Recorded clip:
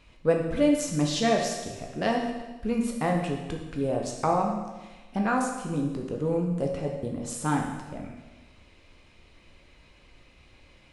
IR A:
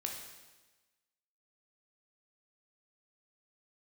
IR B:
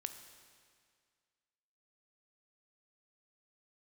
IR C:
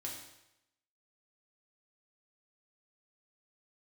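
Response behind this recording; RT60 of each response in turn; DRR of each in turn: A; 1.2, 2.0, 0.85 s; 0.5, 8.0, -2.5 dB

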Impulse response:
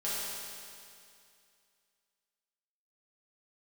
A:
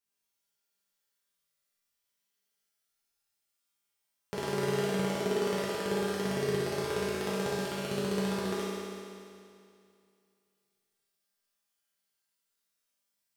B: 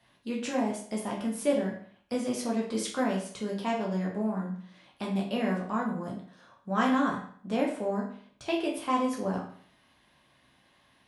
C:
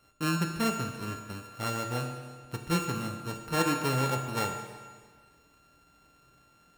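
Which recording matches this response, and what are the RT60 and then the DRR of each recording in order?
A; 2.4, 0.55, 1.6 s; -10.0, -2.5, 3.5 dB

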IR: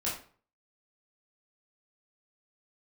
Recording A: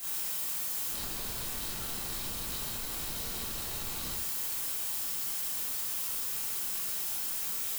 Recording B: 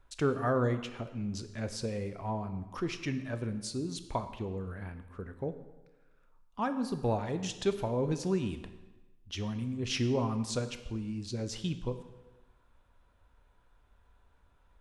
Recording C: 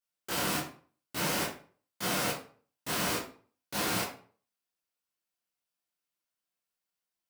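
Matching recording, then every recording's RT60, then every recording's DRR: C; 0.60, 1.2, 0.45 s; -8.5, 9.0, -7.0 dB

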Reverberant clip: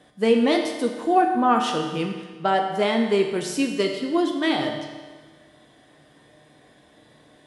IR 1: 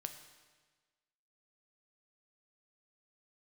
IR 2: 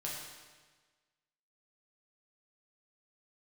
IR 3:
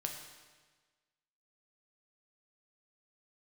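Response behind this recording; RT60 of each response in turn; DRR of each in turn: 3; 1.4, 1.4, 1.4 s; 6.5, -5.0, 2.0 dB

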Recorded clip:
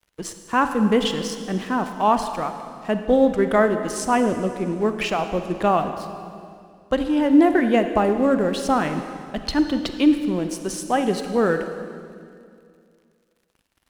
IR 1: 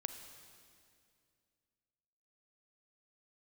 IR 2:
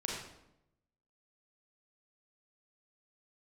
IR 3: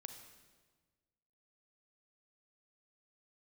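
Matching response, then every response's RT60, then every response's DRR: 1; 2.3, 0.85, 1.4 s; 7.5, -3.0, 6.0 dB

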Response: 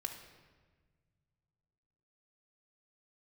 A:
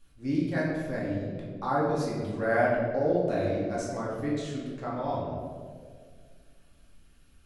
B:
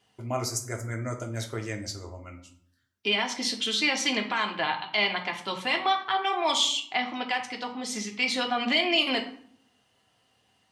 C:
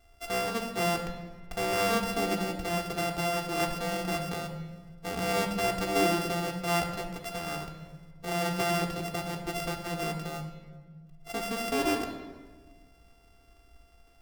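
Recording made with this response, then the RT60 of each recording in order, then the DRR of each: C; 2.0, 0.60, 1.5 s; -6.5, 1.5, 1.0 dB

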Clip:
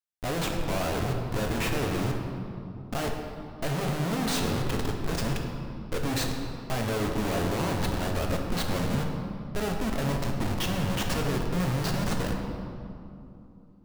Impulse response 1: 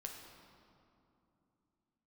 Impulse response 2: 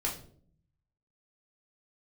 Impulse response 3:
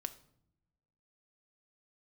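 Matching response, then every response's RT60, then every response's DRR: 1; 2.8 s, 0.55 s, not exponential; 1.0, -4.0, 8.5 dB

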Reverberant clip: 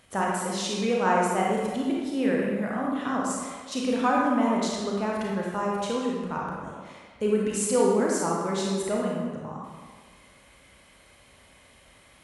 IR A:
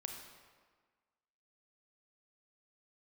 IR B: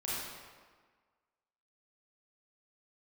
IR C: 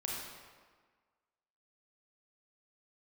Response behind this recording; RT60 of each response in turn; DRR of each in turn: C; 1.5, 1.5, 1.5 s; 2.5, -8.5, -3.5 dB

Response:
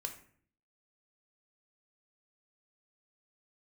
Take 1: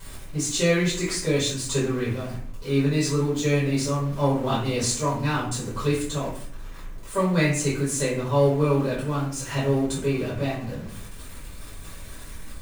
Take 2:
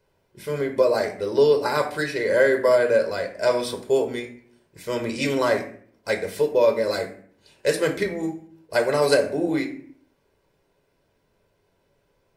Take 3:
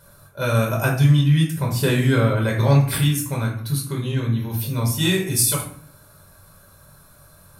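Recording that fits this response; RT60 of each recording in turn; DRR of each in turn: 2; 0.55, 0.55, 0.55 s; -10.0, 4.0, -2.0 dB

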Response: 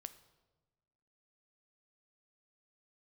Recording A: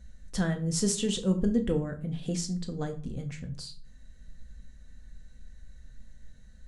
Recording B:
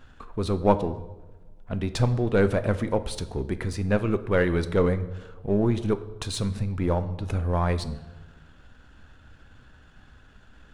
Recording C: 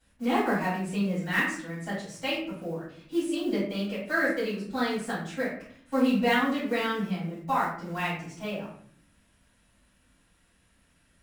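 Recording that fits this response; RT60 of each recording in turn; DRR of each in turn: B; 0.40, 1.2, 0.60 s; 4.5, 11.0, -12.0 dB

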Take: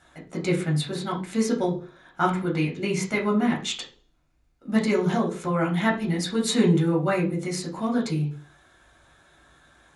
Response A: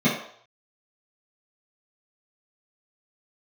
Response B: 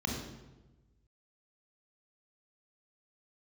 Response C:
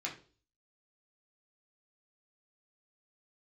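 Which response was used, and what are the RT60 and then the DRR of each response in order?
C; 0.60, 1.1, 0.40 s; -11.0, -0.5, -3.0 dB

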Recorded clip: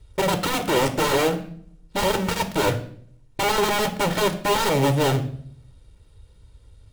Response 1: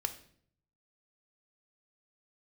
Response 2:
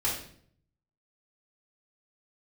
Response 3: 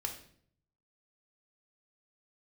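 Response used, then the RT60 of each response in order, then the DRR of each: 1; 0.60, 0.60, 0.60 s; 7.5, -7.5, 2.0 dB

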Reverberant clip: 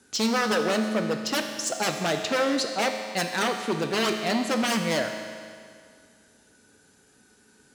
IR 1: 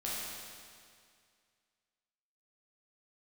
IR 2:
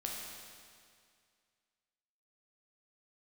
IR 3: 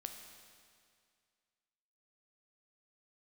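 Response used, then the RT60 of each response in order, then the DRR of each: 3; 2.1, 2.1, 2.1 s; -7.5, -2.5, 4.5 dB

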